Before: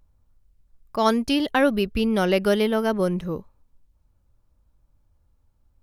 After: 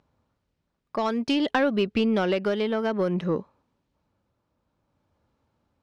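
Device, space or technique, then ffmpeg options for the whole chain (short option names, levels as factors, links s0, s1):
AM radio: -af "highpass=180,lowpass=4300,acompressor=threshold=0.0631:ratio=6,asoftclip=type=tanh:threshold=0.112,tremolo=f=0.56:d=0.36,volume=2.11"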